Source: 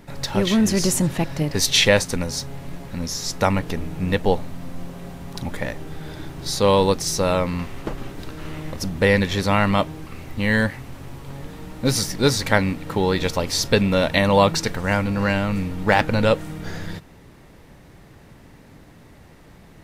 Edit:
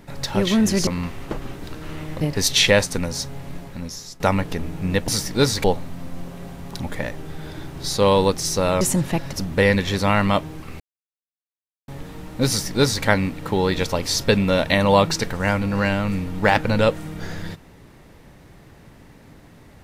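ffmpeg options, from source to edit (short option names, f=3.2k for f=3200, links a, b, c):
-filter_complex "[0:a]asplit=10[a][b][c][d][e][f][g][h][i][j];[a]atrim=end=0.872[k];[b]atrim=start=7.428:end=8.772[l];[c]atrim=start=1.388:end=3.38,asetpts=PTS-STARTPTS,afade=t=out:st=1.352:d=0.64:silence=0.141254[m];[d]atrim=start=3.38:end=4.262,asetpts=PTS-STARTPTS,afade=t=in:d=0.004:c=hsin:silence=0.141254[n];[e]atrim=start=11.918:end=12.482[o];[f]atrim=start=4.258:end=7.432[p];[g]atrim=start=0.868:end=1.392[q];[h]atrim=start=8.768:end=10.24,asetpts=PTS-STARTPTS,afade=t=out:st=1.468:d=0.004:c=hsin[r];[i]atrim=start=10.24:end=11.32,asetpts=PTS-STARTPTS,volume=0[s];[j]atrim=start=11.32,asetpts=PTS-STARTPTS,afade=t=in:d=0.004:c=hsin[t];[k][l]acrossfade=d=0.004:c1=hsin:c2=hsin[u];[m][n]concat=n=2:v=0:a=1[v];[u][v]acrossfade=d=0.004:c1=hsin:c2=hsin[w];[w][o]acrossfade=d=0.004:c1=hsin:c2=hsin[x];[x][p]acrossfade=d=0.004:c1=hsin:c2=hsin[y];[y][q]acrossfade=d=0.004:c1=hsin:c2=hsin[z];[r][s][t]concat=n=3:v=0:a=1[aa];[z][aa]acrossfade=d=0.004:c1=hsin:c2=hsin"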